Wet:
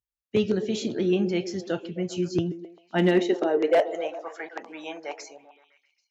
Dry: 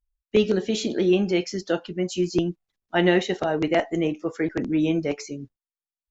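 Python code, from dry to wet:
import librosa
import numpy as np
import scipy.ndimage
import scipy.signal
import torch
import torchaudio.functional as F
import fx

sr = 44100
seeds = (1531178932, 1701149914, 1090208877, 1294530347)

y = fx.filter_sweep_highpass(x, sr, from_hz=110.0, to_hz=830.0, start_s=2.52, end_s=4.14, q=4.0)
y = np.clip(y, -10.0 ** (-9.0 / 20.0), 10.0 ** (-9.0 / 20.0))
y = fx.echo_stepped(y, sr, ms=131, hz=320.0, octaves=0.7, feedback_pct=70, wet_db=-9.0)
y = y * librosa.db_to_amplitude(-5.0)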